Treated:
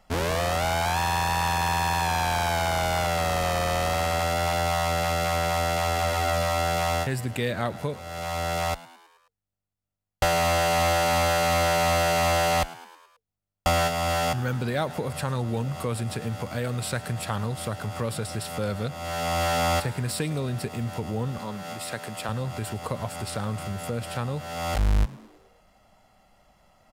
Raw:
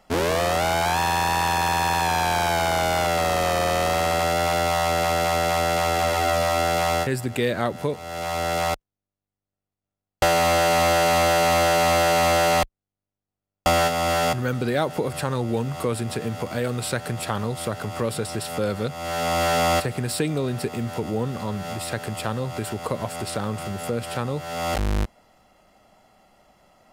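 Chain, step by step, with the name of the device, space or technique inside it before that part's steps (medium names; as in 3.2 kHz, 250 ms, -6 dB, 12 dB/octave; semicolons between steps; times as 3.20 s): 21.38–22.29 s: high-pass 190 Hz 12 dB/octave; frequency-shifting echo 107 ms, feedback 59%, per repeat +84 Hz, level -19.5 dB; low shelf boost with a cut just above (bass shelf 100 Hz +8 dB; peaking EQ 350 Hz -5.5 dB 1 oct); trim -3 dB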